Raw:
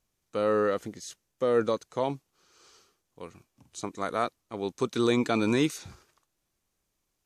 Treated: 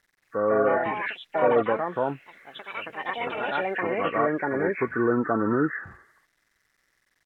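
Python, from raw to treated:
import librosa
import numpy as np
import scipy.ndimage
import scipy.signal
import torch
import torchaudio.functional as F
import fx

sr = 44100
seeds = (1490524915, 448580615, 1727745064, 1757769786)

y = fx.freq_compress(x, sr, knee_hz=1100.0, ratio=4.0)
y = fx.low_shelf(y, sr, hz=320.0, db=-4.5)
y = fx.quant_dither(y, sr, seeds[0], bits=12, dither='none')
y = fx.env_lowpass_down(y, sr, base_hz=1200.0, full_db=-22.5)
y = fx.echo_pitch(y, sr, ms=225, semitones=4, count=3, db_per_echo=-3.0)
y = F.gain(torch.from_numpy(y), 3.5).numpy()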